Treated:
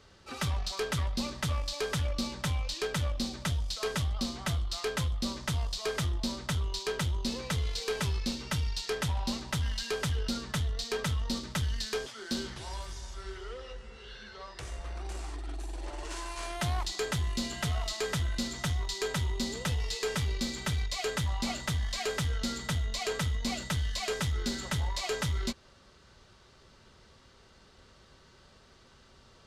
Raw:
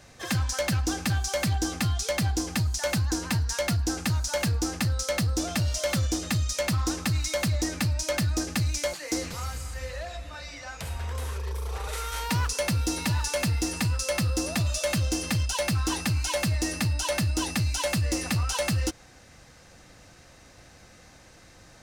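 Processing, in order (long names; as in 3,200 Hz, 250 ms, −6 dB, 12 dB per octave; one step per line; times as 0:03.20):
harmonic generator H 2 −20 dB, 3 −28 dB, 8 −34 dB, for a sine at −20.5 dBFS
healed spectral selection 0:10.31–0:10.52, 620–2,900 Hz
wrong playback speed 45 rpm record played at 33 rpm
level −5 dB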